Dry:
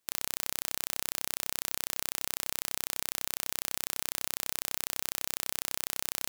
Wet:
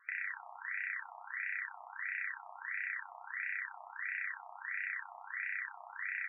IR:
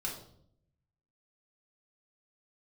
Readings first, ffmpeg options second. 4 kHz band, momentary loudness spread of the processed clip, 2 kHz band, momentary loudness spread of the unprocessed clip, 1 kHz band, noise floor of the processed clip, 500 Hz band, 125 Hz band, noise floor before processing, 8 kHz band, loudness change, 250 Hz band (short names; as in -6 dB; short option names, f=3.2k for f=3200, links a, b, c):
under -35 dB, 6 LU, +6.0 dB, 0 LU, -3.5 dB, -54 dBFS, -15.0 dB, under -40 dB, -79 dBFS, under -40 dB, -7.5 dB, under -40 dB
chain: -filter_complex "[0:a]equalizer=f=77:w=3.2:g=10,bandreject=f=2k:w=22,acrusher=samples=4:mix=1:aa=0.000001,aecho=1:1:11|30:0.422|0.531,asplit=2[a][b];[1:a]atrim=start_sample=2205,asetrate=28665,aresample=44100[c];[b][c]afir=irnorm=-1:irlink=0,volume=-1.5dB[d];[a][d]amix=inputs=2:normalize=0,afftfilt=real='re*between(b*sr/1024,900*pow(2000/900,0.5+0.5*sin(2*PI*1.5*pts/sr))/1.41,900*pow(2000/900,0.5+0.5*sin(2*PI*1.5*pts/sr))*1.41)':imag='im*between(b*sr/1024,900*pow(2000/900,0.5+0.5*sin(2*PI*1.5*pts/sr))/1.41,900*pow(2000/900,0.5+0.5*sin(2*PI*1.5*pts/sr))*1.41)':win_size=1024:overlap=0.75,volume=15.5dB"